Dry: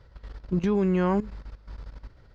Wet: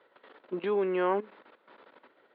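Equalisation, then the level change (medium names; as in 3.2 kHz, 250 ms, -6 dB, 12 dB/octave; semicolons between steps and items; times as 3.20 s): high-pass 320 Hz 24 dB/octave; steep low-pass 3.7 kHz 48 dB/octave; 0.0 dB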